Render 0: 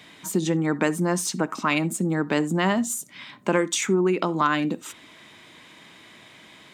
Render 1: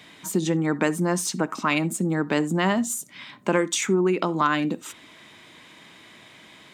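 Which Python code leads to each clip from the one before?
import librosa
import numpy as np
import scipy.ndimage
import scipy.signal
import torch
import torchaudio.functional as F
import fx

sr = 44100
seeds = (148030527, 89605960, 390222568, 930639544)

y = x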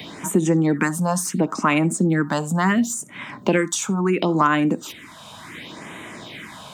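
y = fx.phaser_stages(x, sr, stages=4, low_hz=330.0, high_hz=4900.0, hz=0.71, feedback_pct=5)
y = fx.band_squash(y, sr, depth_pct=40)
y = y * 10.0 ** (6.0 / 20.0)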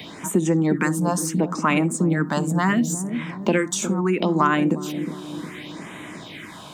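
y = fx.echo_wet_lowpass(x, sr, ms=360, feedback_pct=55, hz=420.0, wet_db=-6.5)
y = y * 10.0 ** (-1.5 / 20.0)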